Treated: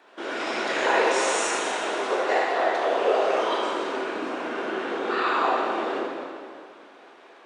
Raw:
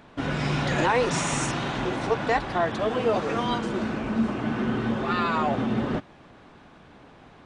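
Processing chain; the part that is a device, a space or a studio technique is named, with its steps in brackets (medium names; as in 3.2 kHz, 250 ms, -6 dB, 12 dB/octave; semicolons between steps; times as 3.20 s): whispering ghost (whisper effect; high-pass 370 Hz 24 dB/octave; reverberation RT60 2.2 s, pre-delay 12 ms, DRR -4.5 dB); trim -3 dB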